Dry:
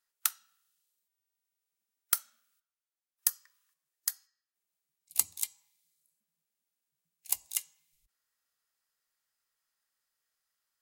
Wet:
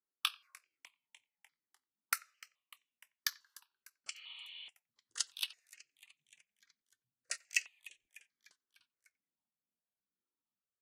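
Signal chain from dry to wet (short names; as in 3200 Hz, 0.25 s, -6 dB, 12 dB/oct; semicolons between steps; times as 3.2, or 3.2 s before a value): repeated pitch sweeps -7.5 st, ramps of 1.054 s; sample leveller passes 1; speakerphone echo 90 ms, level -25 dB; auto-wah 220–2600 Hz, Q 2.8, up, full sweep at -36.5 dBFS; on a send: frequency-shifting echo 0.299 s, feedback 64%, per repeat -84 Hz, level -21 dB; on the sum: spectral repair 4.17–4.66, 240–4500 Hz before; step phaser 4.7 Hz 660–4800 Hz; gain +12 dB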